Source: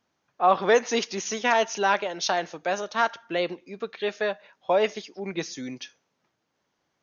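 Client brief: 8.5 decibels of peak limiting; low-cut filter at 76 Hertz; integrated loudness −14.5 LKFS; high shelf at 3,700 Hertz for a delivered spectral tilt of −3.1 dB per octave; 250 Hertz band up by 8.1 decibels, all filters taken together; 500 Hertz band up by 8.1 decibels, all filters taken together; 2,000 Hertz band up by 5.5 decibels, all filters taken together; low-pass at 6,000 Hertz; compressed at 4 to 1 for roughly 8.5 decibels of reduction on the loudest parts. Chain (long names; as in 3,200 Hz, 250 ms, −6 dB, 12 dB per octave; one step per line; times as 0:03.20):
high-pass filter 76 Hz
low-pass filter 6,000 Hz
parametric band 250 Hz +8 dB
parametric band 500 Hz +7.5 dB
parametric band 2,000 Hz +7.5 dB
high-shelf EQ 3,700 Hz −5 dB
downward compressor 4 to 1, threshold −17 dBFS
level +12.5 dB
brickwall limiter −3 dBFS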